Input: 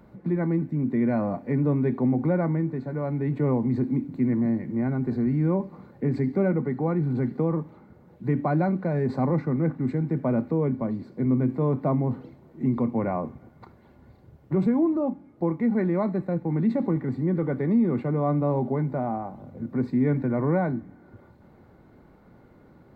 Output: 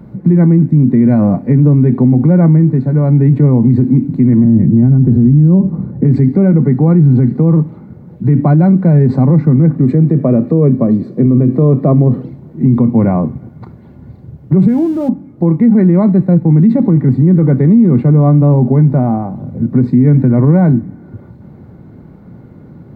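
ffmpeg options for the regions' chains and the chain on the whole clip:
ffmpeg -i in.wav -filter_complex "[0:a]asettb=1/sr,asplit=3[link_01][link_02][link_03];[link_01]atrim=end=4.444[link_04];[link_02]atrim=start=4.44:end=6.04,asetpts=PTS-STARTPTS,afade=type=in:duration=0.004:curve=qsin,afade=type=out:start_time=1.596:duration=0.004:curve=qsin,lowpass=frequency=1300:poles=1,lowshelf=frequency=300:gain=10[link_05];[link_03]atrim=start=6.036[link_06];[link_04][link_05]acrossfade=duration=0.004:curve1=hsin:curve2=qsin[link_07];[link_07][link_06]acrossfade=duration=0.004:curve1=qsin:curve2=hsin,asettb=1/sr,asplit=3[link_08][link_09][link_10];[link_08]atrim=end=9.754[link_11];[link_09]atrim=start=9.75:end=12.22,asetpts=PTS-STARTPTS,afade=type=in:duration=0.004:curve=qsin,afade=type=out:start_time=2.466:duration=0.004:curve=qsin,highpass=150,equalizer=frequency=320:width_type=o:width=0.89:gain=10,aecho=1:1:1.7:0.56,atrim=end_sample=108927[link_12];[link_10]atrim=start=12.216[link_13];[link_11][link_12]acrossfade=duration=0.004:curve1=hsin:curve2=qsin[link_14];[link_14][link_13]acrossfade=duration=0.004:curve1=qsin:curve2=hsin,asettb=1/sr,asplit=3[link_15][link_16][link_17];[link_15]atrim=end=14.684[link_18];[link_16]atrim=start=14.68:end=15.09,asetpts=PTS-STARTPTS,afade=type=in:duration=0.004:curve=qsin,afade=type=out:start_time=0.406:duration=0.004:curve=qsin,aeval=exprs='val(0)+0.5*0.00891*sgn(val(0))':channel_layout=same,asuperstop=centerf=1100:order=4:qfactor=5.8,equalizer=frequency=300:width_type=o:width=2.2:gain=-6[link_19];[link_17]atrim=start=15.086[link_20];[link_18][link_19]acrossfade=duration=0.004:curve1=hsin:curve2=qsin[link_21];[link_21][link_20]acrossfade=duration=0.004:curve1=qsin:curve2=hsin,equalizer=frequency=140:width_type=o:width=2.6:gain=15,alimiter=level_in=7.5dB:limit=-1dB:release=50:level=0:latency=1,volume=-1dB" out.wav

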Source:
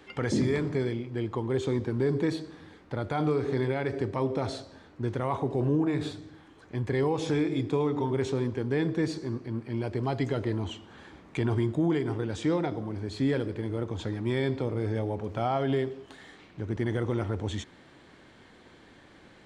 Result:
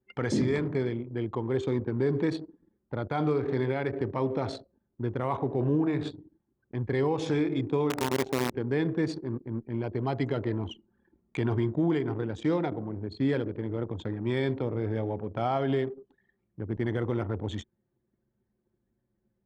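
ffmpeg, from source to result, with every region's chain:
ffmpeg -i in.wav -filter_complex "[0:a]asettb=1/sr,asplit=3[link_01][link_02][link_03];[link_01]atrim=end=7.904[link_04];[link_02]atrim=start=7.9:end=8.54,asetpts=PTS-STARTPTS,afade=type=in:duration=0.004:curve=qsin,afade=type=out:start_time=0.636:duration=0.004:curve=qsin,highpass=130,acrusher=bits=5:dc=4:mix=0:aa=0.000001[link_05];[link_03]atrim=start=8.536[link_06];[link_04][link_05]acrossfade=duration=0.004:curve1=hsin:curve2=qsin[link_07];[link_07][link_06]acrossfade=duration=0.004:curve1=qsin:curve2=hsin,highpass=83,anlmdn=1.58" out.wav

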